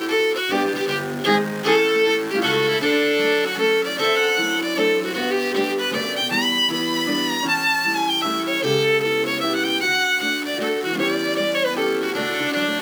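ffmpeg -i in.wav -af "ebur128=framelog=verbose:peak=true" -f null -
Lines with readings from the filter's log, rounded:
Integrated loudness:
  I:         -19.9 LUFS
  Threshold: -29.9 LUFS
Loudness range:
  LRA:         1.8 LU
  Threshold: -39.7 LUFS
  LRA low:   -20.5 LUFS
  LRA high:  -18.7 LUFS
True peak:
  Peak:       -5.2 dBFS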